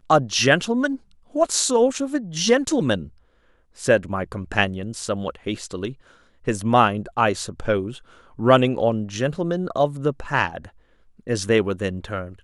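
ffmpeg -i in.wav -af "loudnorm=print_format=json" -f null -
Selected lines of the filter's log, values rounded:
"input_i" : "-22.3",
"input_tp" : "-1.4",
"input_lra" : "3.4",
"input_thresh" : "-33.0",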